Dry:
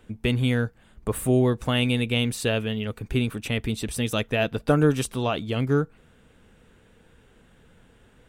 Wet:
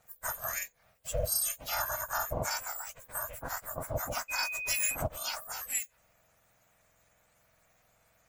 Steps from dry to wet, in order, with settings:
frequency axis turned over on the octave scale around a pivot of 1,800 Hz
ring modulation 270 Hz
0:04.28–0:04.94: steady tone 2,500 Hz −32 dBFS
level −2.5 dB

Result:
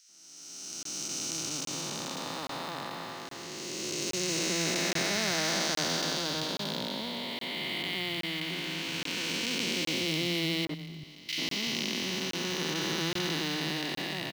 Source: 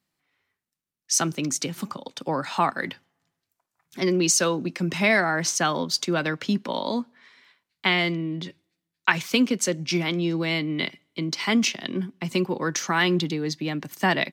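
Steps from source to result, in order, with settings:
spectrum smeared in time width 1,140 ms
0:10.65–0:11.29: noise gate −28 dBFS, range −19 dB
parametric band 4,200 Hz +12 dB 2.2 octaves
floating-point word with a short mantissa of 2 bits
three-band delay without the direct sound highs, mids, lows 90/380 ms, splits 160/1,600 Hz
regular buffer underruns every 0.82 s, samples 1,024, zero, from 0:00.83
level −2.5 dB

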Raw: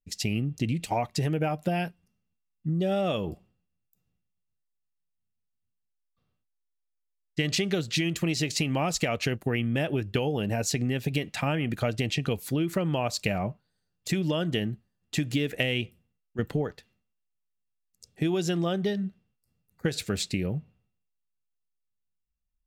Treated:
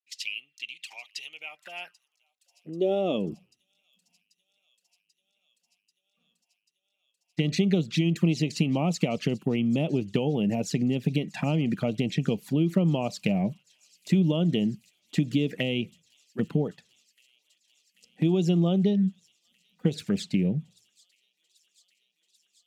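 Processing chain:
high-shelf EQ 6,100 Hz −8.5 dB
flanger swept by the level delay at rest 4.2 ms, full sweep at −24 dBFS
delay with a high-pass on its return 788 ms, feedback 82%, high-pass 5,400 Hz, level −17.5 dB
high-pass filter sweep 2,700 Hz → 180 Hz, 0:01.27–0:03.40

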